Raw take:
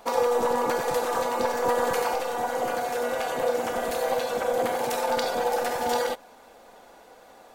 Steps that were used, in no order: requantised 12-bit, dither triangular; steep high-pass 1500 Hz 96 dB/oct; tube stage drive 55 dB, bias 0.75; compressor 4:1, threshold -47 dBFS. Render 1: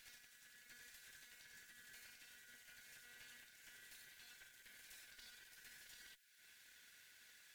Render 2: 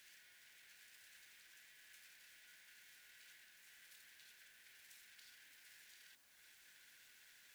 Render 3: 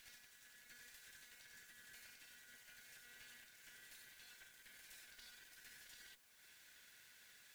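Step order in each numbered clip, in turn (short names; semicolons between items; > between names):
compressor > requantised > steep high-pass > tube stage; compressor > tube stage > steep high-pass > requantised; compressor > steep high-pass > tube stage > requantised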